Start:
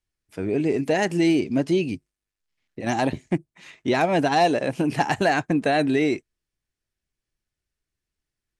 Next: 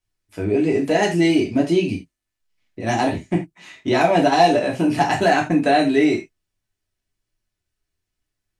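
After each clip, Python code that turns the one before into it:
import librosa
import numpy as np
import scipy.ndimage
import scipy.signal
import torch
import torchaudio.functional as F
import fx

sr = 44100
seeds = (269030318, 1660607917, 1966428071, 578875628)

y = fx.rev_gated(x, sr, seeds[0], gate_ms=110, shape='falling', drr_db=-1.5)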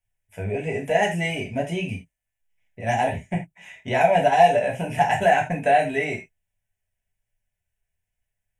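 y = fx.fixed_phaser(x, sr, hz=1200.0, stages=6)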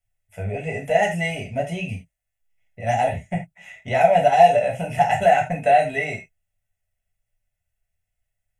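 y = x + 0.57 * np.pad(x, (int(1.5 * sr / 1000.0), 0))[:len(x)]
y = y * librosa.db_to_amplitude(-1.0)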